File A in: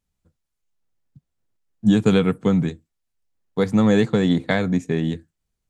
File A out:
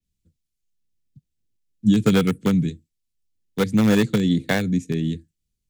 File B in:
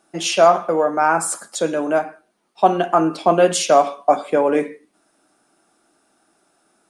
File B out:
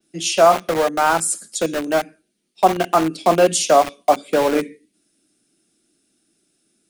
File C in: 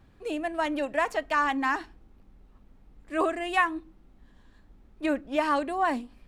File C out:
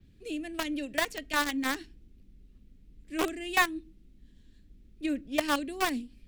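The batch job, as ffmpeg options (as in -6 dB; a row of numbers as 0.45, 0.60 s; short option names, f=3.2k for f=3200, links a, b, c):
-filter_complex "[0:a]adynamicequalizer=threshold=0.0126:dfrequency=9600:dqfactor=0.8:tfrequency=9600:tqfactor=0.8:attack=5:release=100:ratio=0.375:range=1.5:mode=boostabove:tftype=bell,acrossover=split=110|420|2100[a][b][c][d];[c]aeval=exprs='val(0)*gte(abs(val(0)),0.0891)':c=same[e];[a][b][e][d]amix=inputs=4:normalize=0"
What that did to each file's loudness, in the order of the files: -1.0, 0.0, -3.0 LU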